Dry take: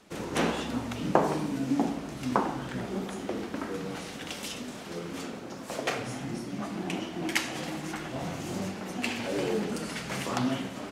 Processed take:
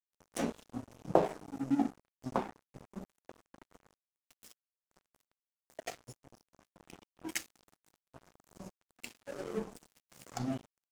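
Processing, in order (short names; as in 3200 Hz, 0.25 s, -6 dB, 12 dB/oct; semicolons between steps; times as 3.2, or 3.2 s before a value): spectral noise reduction 9 dB; band shelf 2000 Hz -9 dB 2.6 oct; notches 50/100/150/200/250/300/350/400/450 Hz; crossover distortion -39 dBFS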